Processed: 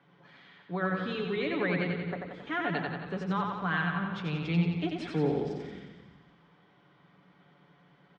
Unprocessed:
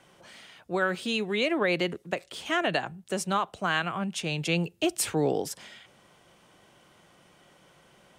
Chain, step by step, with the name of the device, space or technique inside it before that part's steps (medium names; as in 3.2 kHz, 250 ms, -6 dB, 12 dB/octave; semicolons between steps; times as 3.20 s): 2.00–2.47 s: high-order bell 3.3 kHz -10.5 dB; comb 7 ms, depth 53%; feedback delay 90 ms, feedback 58%, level -4 dB; frequency-shifting delay pedal into a guitar cabinet (frequency-shifting echo 156 ms, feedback 61%, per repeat -73 Hz, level -15 dB; cabinet simulation 83–3500 Hz, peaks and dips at 96 Hz -7 dB, 180 Hz +8 dB, 610 Hz -8 dB, 2.8 kHz -9 dB); trim -5.5 dB